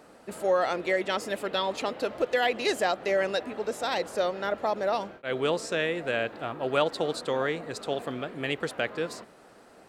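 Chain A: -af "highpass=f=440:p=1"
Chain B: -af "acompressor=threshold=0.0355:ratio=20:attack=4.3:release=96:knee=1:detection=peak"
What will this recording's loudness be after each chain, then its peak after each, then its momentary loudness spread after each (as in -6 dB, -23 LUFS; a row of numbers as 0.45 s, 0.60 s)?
-30.5 LUFS, -35.0 LUFS; -11.0 dBFS, -17.0 dBFS; 8 LU, 3 LU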